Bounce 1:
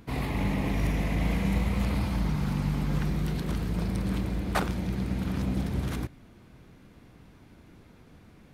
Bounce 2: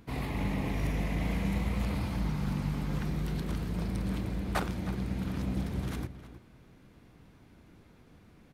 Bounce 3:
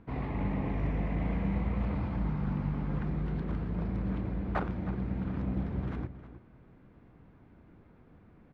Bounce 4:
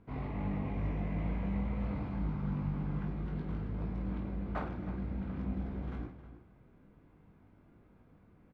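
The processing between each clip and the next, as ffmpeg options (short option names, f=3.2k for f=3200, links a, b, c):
-filter_complex "[0:a]asplit=2[a][b];[b]adelay=314.9,volume=-13dB,highshelf=f=4k:g=-7.08[c];[a][c]amix=inputs=2:normalize=0,volume=-4dB"
-af "lowpass=1.7k"
-filter_complex "[0:a]bandreject=f=1.8k:w=19,asplit=2[a][b];[b]aecho=0:1:20|50|95|162.5|263.8:0.631|0.398|0.251|0.158|0.1[c];[a][c]amix=inputs=2:normalize=0,volume=-6.5dB"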